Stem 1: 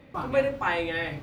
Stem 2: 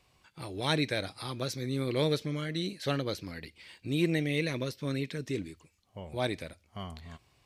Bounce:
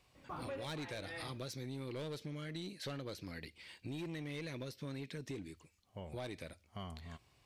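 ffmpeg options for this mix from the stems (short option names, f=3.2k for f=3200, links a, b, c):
-filter_complex "[0:a]adelay=150,volume=-10.5dB[a];[1:a]volume=-3dB,asplit=2[b][c];[c]apad=whole_len=60545[d];[a][d]sidechaincompress=threshold=-35dB:ratio=8:attack=50:release=646[e];[e][b]amix=inputs=2:normalize=0,asoftclip=type=tanh:threshold=-29.5dB,acompressor=threshold=-41dB:ratio=6"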